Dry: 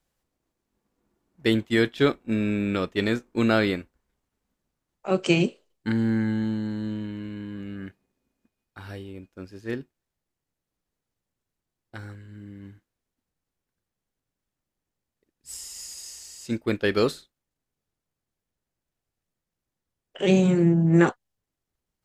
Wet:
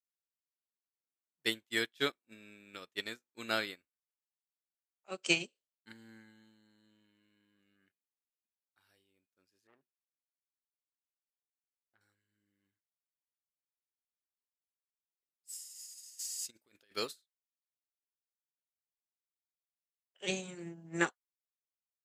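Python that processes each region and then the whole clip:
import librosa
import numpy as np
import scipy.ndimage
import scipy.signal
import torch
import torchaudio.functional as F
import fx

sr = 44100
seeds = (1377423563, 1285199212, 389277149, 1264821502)

y = fx.chain(x, sr, fx.lowpass(hz=1900.0, slope=12),
    fx.transformer_sat(knee_hz=950.0), at=(9.67, 12.01))
y = fx.chain(y, sr, fx.bass_treble(bass_db=0, treble_db=3),
    fx.over_compress(threshold_db=-29.0, ratio=-0.5), at=(16.19, 16.96))
y = fx.tilt_eq(y, sr, slope=4.0)
y = fx.upward_expand(y, sr, threshold_db=-35.0, expansion=2.5)
y = y * librosa.db_to_amplitude(-6.0)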